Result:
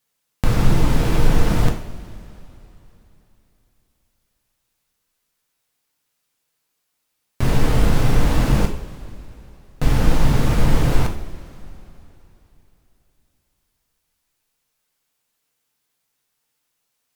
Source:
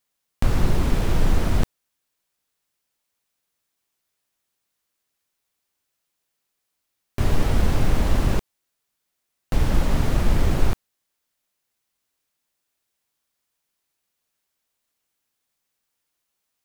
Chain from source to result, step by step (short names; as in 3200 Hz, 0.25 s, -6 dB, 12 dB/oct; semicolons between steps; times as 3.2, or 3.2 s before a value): two-slope reverb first 0.46 s, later 3.3 s, from -18 dB, DRR 2 dB; varispeed -3%; gain +2.5 dB